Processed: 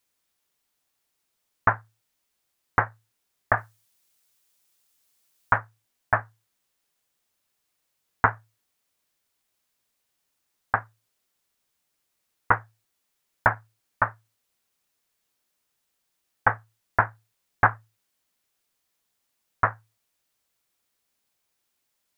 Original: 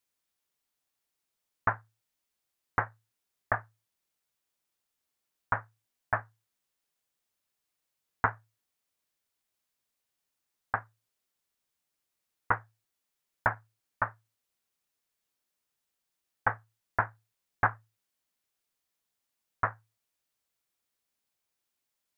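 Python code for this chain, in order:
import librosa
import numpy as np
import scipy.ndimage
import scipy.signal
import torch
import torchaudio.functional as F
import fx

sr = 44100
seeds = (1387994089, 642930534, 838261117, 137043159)

y = fx.high_shelf(x, sr, hz=3000.0, db=9.0, at=(3.57, 5.58))
y = y * librosa.db_to_amplitude(7.0)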